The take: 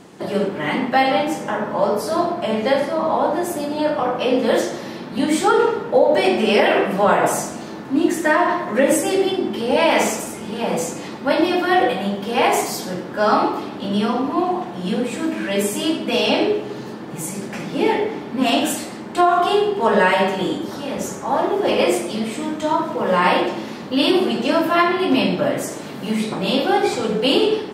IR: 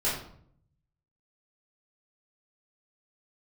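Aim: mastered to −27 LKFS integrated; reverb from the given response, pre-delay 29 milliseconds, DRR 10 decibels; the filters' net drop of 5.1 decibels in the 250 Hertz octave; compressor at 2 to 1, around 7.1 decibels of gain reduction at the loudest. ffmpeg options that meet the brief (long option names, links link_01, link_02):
-filter_complex "[0:a]equalizer=frequency=250:width_type=o:gain=-7,acompressor=threshold=-25dB:ratio=2,asplit=2[link_01][link_02];[1:a]atrim=start_sample=2205,adelay=29[link_03];[link_02][link_03]afir=irnorm=-1:irlink=0,volume=-19.5dB[link_04];[link_01][link_04]amix=inputs=2:normalize=0,volume=-1.5dB"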